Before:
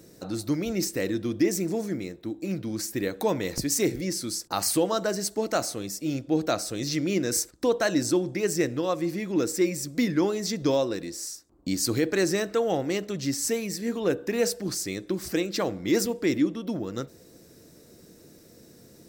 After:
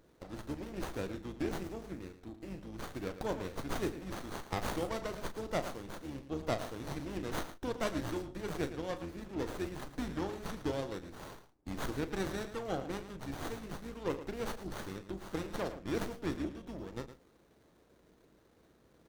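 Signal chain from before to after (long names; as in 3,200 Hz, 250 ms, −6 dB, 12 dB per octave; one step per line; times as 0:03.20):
sub-octave generator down 2 octaves, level −2 dB
low-shelf EQ 370 Hz −10.5 dB
double-tracking delay 36 ms −9.5 dB
harmonic and percussive parts rebalanced harmonic −7 dB
single-tap delay 111 ms −12 dB
windowed peak hold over 17 samples
level −5 dB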